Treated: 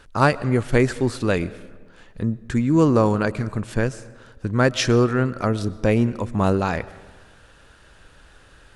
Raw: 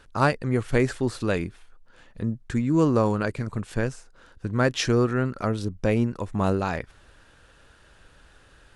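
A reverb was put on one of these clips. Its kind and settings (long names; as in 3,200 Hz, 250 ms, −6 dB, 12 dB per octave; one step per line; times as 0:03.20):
comb and all-pass reverb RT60 1.4 s, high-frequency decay 0.6×, pre-delay 75 ms, DRR 18 dB
level +4 dB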